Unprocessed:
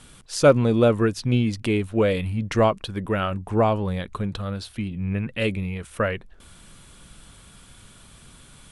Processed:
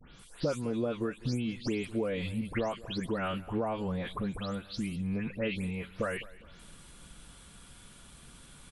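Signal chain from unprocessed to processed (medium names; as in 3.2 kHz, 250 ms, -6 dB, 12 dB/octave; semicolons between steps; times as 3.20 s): delay that grows with frequency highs late, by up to 192 ms; compression 10:1, threshold -24 dBFS, peak gain reduction 15 dB; feedback delay 204 ms, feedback 36%, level -20 dB; trim -4 dB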